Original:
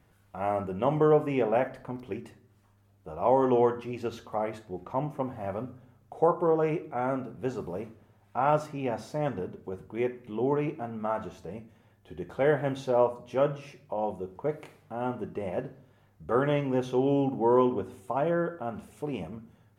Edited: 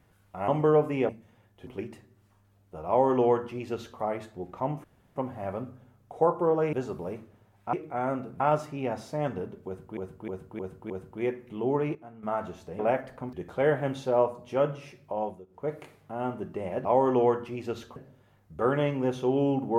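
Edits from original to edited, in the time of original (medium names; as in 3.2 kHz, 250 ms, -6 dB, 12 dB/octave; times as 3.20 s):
0.48–0.85 s: delete
1.46–2.00 s: swap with 11.56–12.14 s
3.21–4.32 s: copy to 15.66 s
5.17 s: insert room tone 0.32 s
6.74–7.41 s: move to 8.41 s
9.67–9.98 s: loop, 5 plays
10.72–11.00 s: gain -11 dB
14.02–14.53 s: dip -19 dB, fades 0.25 s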